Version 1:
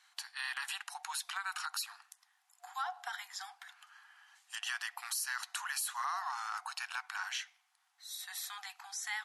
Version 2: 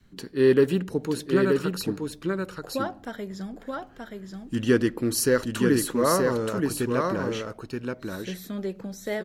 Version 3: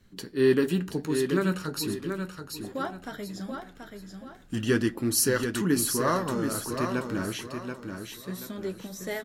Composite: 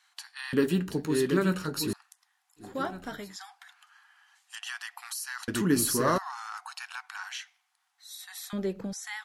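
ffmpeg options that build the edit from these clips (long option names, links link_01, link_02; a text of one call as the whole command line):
ffmpeg -i take0.wav -i take1.wav -i take2.wav -filter_complex "[2:a]asplit=3[link_01][link_02][link_03];[0:a]asplit=5[link_04][link_05][link_06][link_07][link_08];[link_04]atrim=end=0.532[link_09];[link_01]atrim=start=0.528:end=1.932[link_10];[link_05]atrim=start=1.928:end=2.8[link_11];[link_02]atrim=start=2.56:end=3.37[link_12];[link_06]atrim=start=3.13:end=5.482[link_13];[link_03]atrim=start=5.478:end=6.182[link_14];[link_07]atrim=start=6.178:end=8.532[link_15];[1:a]atrim=start=8.528:end=8.932[link_16];[link_08]atrim=start=8.928[link_17];[link_09][link_10]acrossfade=duration=0.004:curve1=hsin:curve2=hsin[link_18];[link_18][link_11]acrossfade=duration=0.004:curve1=hsin:curve2=hsin[link_19];[link_19][link_12]acrossfade=duration=0.24:curve1=tri:curve2=tri[link_20];[link_20][link_13]acrossfade=duration=0.24:curve1=tri:curve2=tri[link_21];[link_21][link_14]acrossfade=duration=0.004:curve1=hsin:curve2=hsin[link_22];[link_22][link_15]acrossfade=duration=0.004:curve1=hsin:curve2=hsin[link_23];[link_23][link_16]acrossfade=duration=0.004:curve1=hsin:curve2=hsin[link_24];[link_24][link_17]acrossfade=duration=0.004:curve1=hsin:curve2=hsin" out.wav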